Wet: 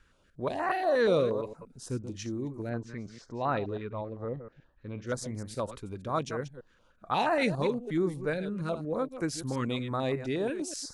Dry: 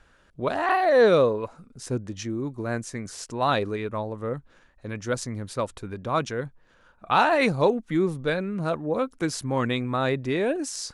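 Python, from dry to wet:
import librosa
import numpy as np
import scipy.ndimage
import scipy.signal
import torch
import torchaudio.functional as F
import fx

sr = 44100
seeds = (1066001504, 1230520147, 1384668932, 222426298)

y = fx.reverse_delay(x, sr, ms=118, wet_db=-11.0)
y = fx.air_absorb(y, sr, metres=200.0, at=(2.69, 5.07))
y = fx.filter_held_notch(y, sr, hz=8.4, low_hz=700.0, high_hz=3400.0)
y = F.gain(torch.from_numpy(y), -5.0).numpy()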